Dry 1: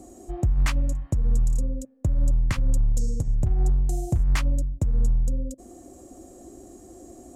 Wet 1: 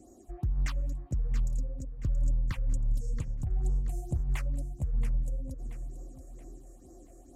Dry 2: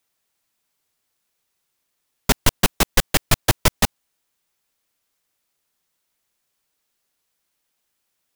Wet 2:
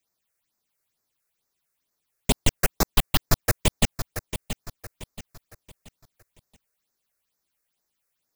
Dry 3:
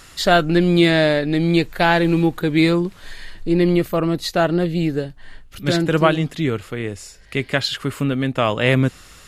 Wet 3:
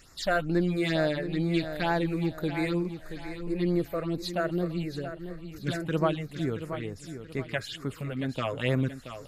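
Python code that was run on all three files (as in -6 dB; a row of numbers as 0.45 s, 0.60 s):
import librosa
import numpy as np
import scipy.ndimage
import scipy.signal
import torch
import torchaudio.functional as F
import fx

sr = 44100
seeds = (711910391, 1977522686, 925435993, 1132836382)

p1 = fx.phaser_stages(x, sr, stages=6, low_hz=220.0, high_hz=3200.0, hz=2.2, feedback_pct=0)
p2 = p1 + fx.echo_feedback(p1, sr, ms=678, feedback_pct=36, wet_db=-10.5, dry=0)
y = p2 * 10.0 ** (-30 / 20.0) / np.sqrt(np.mean(np.square(p2)))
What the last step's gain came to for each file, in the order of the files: -8.0 dB, -2.5 dB, -9.5 dB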